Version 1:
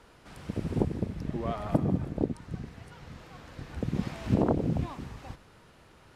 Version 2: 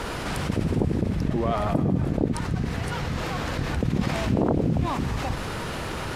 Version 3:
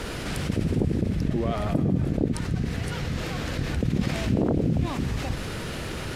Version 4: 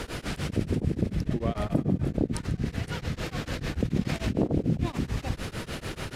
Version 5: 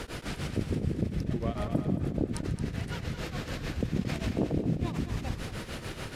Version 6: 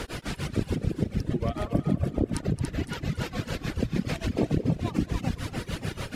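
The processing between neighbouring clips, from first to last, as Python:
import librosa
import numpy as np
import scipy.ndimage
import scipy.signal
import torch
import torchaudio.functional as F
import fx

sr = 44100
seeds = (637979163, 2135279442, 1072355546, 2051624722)

y1 = fx.env_flatten(x, sr, amount_pct=70)
y2 = fx.peak_eq(y1, sr, hz=960.0, db=-8.0, octaves=1.1)
y3 = y2 * np.abs(np.cos(np.pi * 6.8 * np.arange(len(y2)) / sr))
y4 = fx.echo_feedback(y3, sr, ms=222, feedback_pct=35, wet_db=-9.5)
y4 = F.gain(torch.from_numpy(y4), -3.5).numpy()
y5 = fx.echo_split(y4, sr, split_hz=350.0, low_ms=578, high_ms=284, feedback_pct=52, wet_db=-5)
y5 = fx.dereverb_blind(y5, sr, rt60_s=1.7)
y5 = F.gain(torch.from_numpy(y5), 4.0).numpy()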